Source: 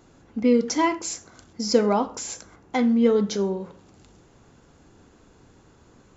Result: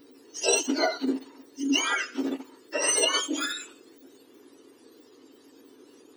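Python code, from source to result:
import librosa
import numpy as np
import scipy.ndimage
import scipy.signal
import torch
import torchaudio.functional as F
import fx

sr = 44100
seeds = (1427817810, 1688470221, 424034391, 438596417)

y = fx.octave_mirror(x, sr, pivot_hz=1400.0)
y = fx.formant_shift(y, sr, semitones=-6)
y = fx.dmg_noise_band(y, sr, seeds[0], low_hz=250.0, high_hz=470.0, level_db=-55.0)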